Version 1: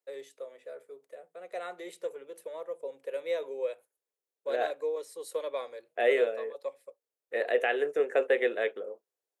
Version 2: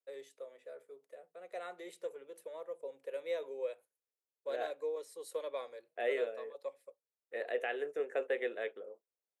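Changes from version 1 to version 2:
first voice −5.5 dB
second voice −9.0 dB

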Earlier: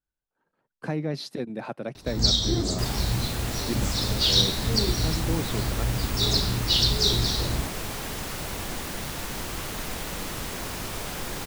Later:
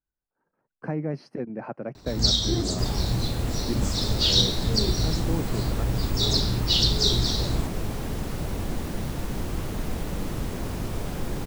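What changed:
speech: add moving average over 12 samples
second sound: add tilt shelving filter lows +7.5 dB, about 660 Hz

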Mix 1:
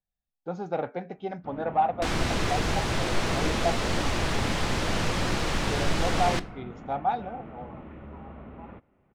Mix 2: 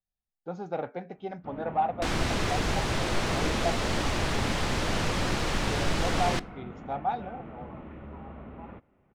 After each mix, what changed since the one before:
speech −3.0 dB
second sound: send −7.0 dB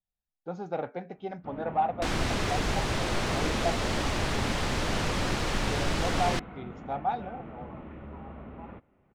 reverb: off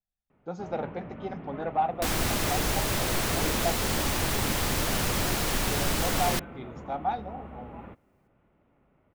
first sound: entry −0.85 s
master: remove high-frequency loss of the air 87 metres

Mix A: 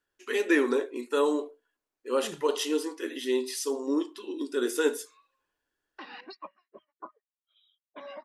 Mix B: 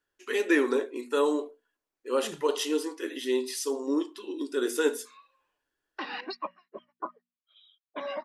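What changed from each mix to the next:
background +8.0 dB
master: add mains-hum notches 60/120/180/240 Hz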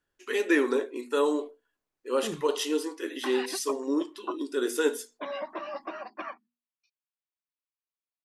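second voice +7.0 dB
background: entry −2.75 s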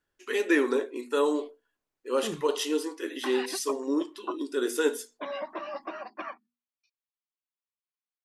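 second voice: remove low-pass filter 1,300 Hz 6 dB per octave

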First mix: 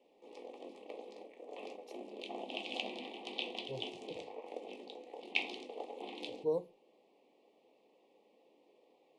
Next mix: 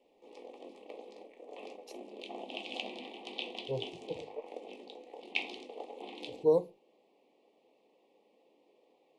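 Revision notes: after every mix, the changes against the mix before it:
speech +8.0 dB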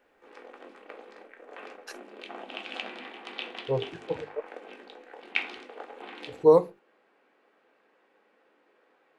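speech +8.0 dB
master: remove Butterworth band-reject 1,500 Hz, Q 0.79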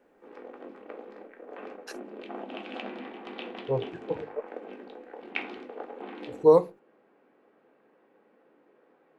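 background: add spectral tilt −4 dB per octave

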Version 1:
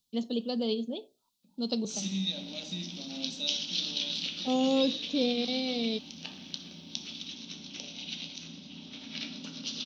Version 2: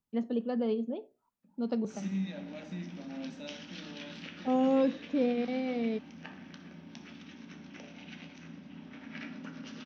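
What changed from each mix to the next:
master: add high shelf with overshoot 2,600 Hz −13.5 dB, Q 3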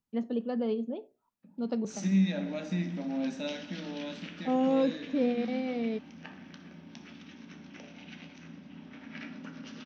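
second voice +9.0 dB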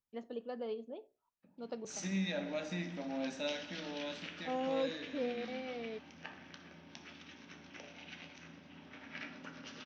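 first voice −5.5 dB
master: add parametric band 210 Hz −12 dB 1 octave

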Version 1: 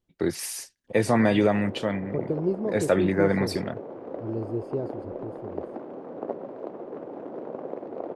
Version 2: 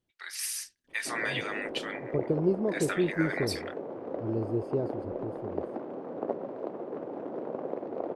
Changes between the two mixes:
first voice: add high-pass filter 1,300 Hz 24 dB per octave
master: add notch filter 6,900 Hz, Q 29

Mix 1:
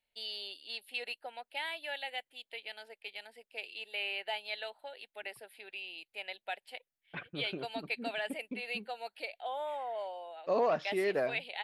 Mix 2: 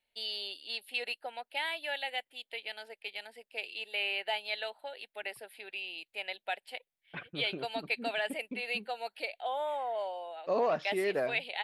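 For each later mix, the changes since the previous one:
first voice +3.5 dB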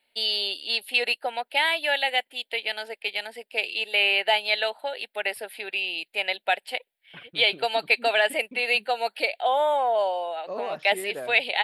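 first voice +12.0 dB
second voice −3.5 dB

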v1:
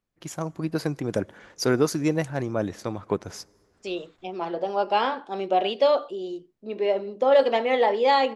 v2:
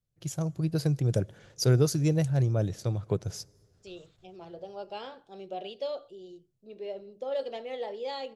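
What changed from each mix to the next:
second voice −9.5 dB
master: add graphic EQ with 10 bands 125 Hz +12 dB, 250 Hz −10 dB, 1,000 Hz −11 dB, 2,000 Hz −8 dB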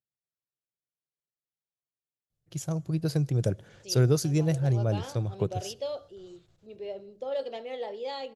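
first voice: entry +2.30 s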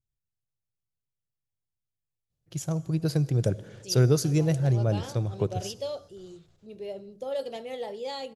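first voice: send +11.5 dB
second voice: remove band-pass filter 270–4,300 Hz

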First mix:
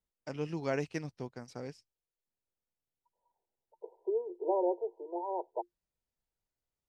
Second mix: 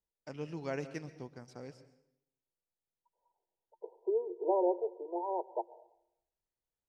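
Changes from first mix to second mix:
first voice −6.0 dB
reverb: on, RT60 0.80 s

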